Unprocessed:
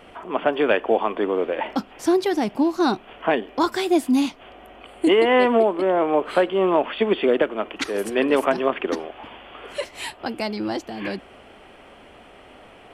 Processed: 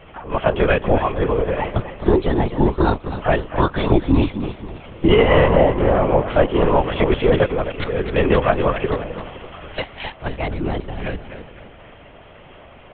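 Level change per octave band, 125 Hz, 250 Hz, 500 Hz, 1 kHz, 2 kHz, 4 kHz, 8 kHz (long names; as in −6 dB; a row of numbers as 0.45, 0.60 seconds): +20.0 dB, +1.5 dB, +2.5 dB, +2.0 dB, +2.5 dB, +0.5 dB, below −35 dB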